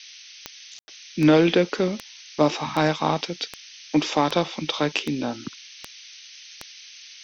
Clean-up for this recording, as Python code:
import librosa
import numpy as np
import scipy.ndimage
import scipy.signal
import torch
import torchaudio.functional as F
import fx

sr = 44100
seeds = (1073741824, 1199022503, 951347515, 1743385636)

y = fx.fix_declick_ar(x, sr, threshold=10.0)
y = fx.fix_ambience(y, sr, seeds[0], print_start_s=5.87, print_end_s=6.37, start_s=0.79, end_s=0.88)
y = fx.noise_reduce(y, sr, print_start_s=0.12, print_end_s=0.62, reduce_db=22.0)